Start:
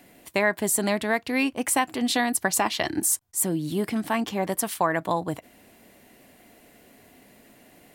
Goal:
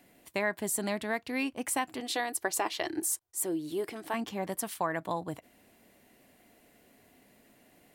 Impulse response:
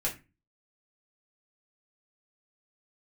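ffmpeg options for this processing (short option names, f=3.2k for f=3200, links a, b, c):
-filter_complex "[0:a]asettb=1/sr,asplit=3[a][b][c];[a]atrim=end=2.004[d];[b]atrim=start=2:end=4.14,asetpts=PTS-STARTPTS,afade=t=in:d=0.004:c=qsin,afade=t=out:st=2.136:d=0.004:c=qsin,lowshelf=f=280:t=q:w=3:g=-6.5[e];[c]atrim=start=4.136[f];[d][e]acrossfade=d=0.004:c1=hsin:c2=qsin[g];[g][f]acrossfade=d=0.004:c1=qsin:c2=hsin,volume=-8dB"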